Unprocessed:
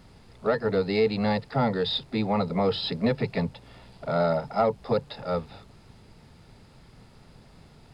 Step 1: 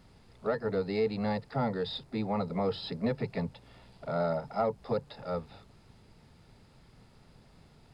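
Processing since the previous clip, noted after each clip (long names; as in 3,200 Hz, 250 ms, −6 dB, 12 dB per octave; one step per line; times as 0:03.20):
dynamic equaliser 3,200 Hz, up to −5 dB, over −44 dBFS, Q 1.1
level −6 dB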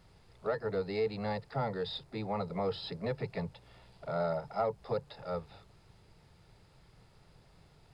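parametric band 240 Hz −10.5 dB 0.41 octaves
level −2 dB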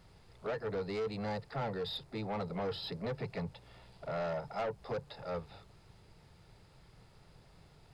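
soft clipping −32.5 dBFS, distortion −11 dB
level +1 dB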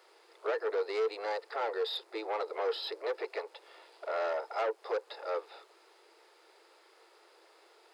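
Chebyshev high-pass with heavy ripple 330 Hz, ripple 3 dB
level +6 dB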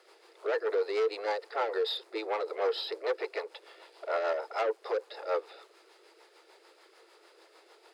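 rotating-speaker cabinet horn 6.7 Hz
level +5 dB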